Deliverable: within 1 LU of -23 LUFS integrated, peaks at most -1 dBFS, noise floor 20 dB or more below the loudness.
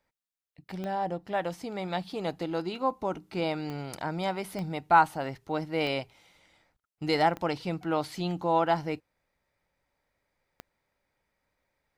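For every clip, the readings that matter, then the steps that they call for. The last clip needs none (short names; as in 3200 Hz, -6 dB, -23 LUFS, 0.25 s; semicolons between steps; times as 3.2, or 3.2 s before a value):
clicks 6; loudness -30.0 LUFS; peak -8.5 dBFS; loudness target -23.0 LUFS
-> de-click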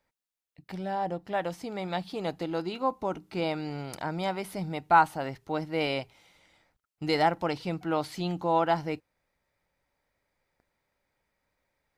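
clicks 0; loudness -30.0 LUFS; peak -8.5 dBFS; loudness target -23.0 LUFS
-> gain +7 dB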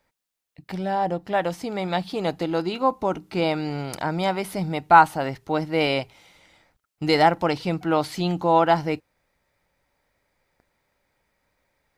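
loudness -23.0 LUFS; peak -1.5 dBFS; noise floor -80 dBFS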